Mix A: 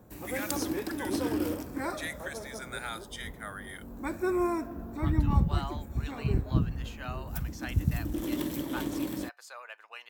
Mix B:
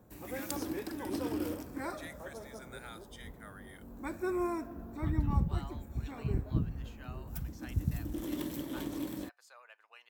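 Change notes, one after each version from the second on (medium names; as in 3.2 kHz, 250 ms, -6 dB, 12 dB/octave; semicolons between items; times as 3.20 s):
speech -11.0 dB; background -5.0 dB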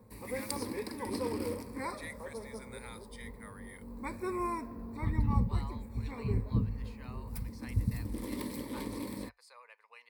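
master: add rippled EQ curve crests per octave 0.92, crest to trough 12 dB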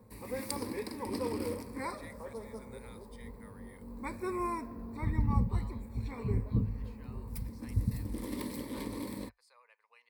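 speech -7.5 dB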